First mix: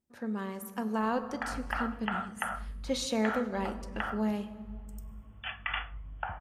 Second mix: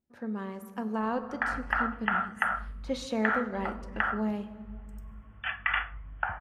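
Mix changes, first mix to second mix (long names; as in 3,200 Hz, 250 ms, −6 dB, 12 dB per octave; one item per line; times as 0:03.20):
background: add parametric band 1,700 Hz +10.5 dB 1.3 octaves
master: add high-shelf EQ 3,900 Hz −11 dB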